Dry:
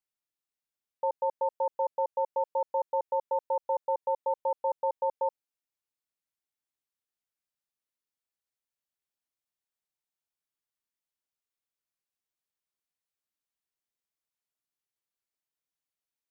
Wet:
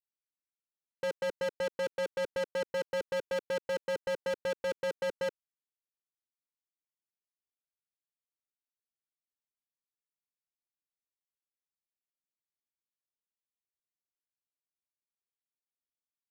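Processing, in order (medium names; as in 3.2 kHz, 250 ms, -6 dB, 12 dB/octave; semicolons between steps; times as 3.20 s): gate -25 dBFS, range -10 dB; resonant low shelf 580 Hz +13 dB, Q 1.5; waveshaping leveller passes 5; trim -5 dB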